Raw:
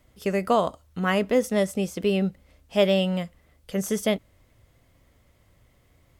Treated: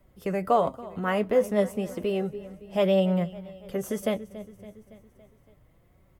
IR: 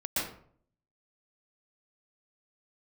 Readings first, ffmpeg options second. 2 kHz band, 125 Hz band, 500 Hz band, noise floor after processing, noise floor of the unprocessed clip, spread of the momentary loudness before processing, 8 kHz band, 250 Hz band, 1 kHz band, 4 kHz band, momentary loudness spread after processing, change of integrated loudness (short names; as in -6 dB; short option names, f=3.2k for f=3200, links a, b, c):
-5.5 dB, -2.0 dB, -1.0 dB, -61 dBFS, -62 dBFS, 9 LU, -8.5 dB, -3.0 dB, 0.0 dB, -8.5 dB, 15 LU, -2.0 dB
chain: -filter_complex "[0:a]equalizer=f=5.2k:t=o:w=2.9:g=-12,aecho=1:1:281|562|843|1124|1405:0.112|0.0662|0.0391|0.023|0.0136,acrossover=split=400|530|6200[a][b][c][d];[a]alimiter=level_in=2.5dB:limit=-24dB:level=0:latency=1,volume=-2.5dB[e];[e][b][c][d]amix=inputs=4:normalize=0,flanger=delay=5.1:depth=5:regen=46:speed=0.33:shape=triangular,volume=5.5dB"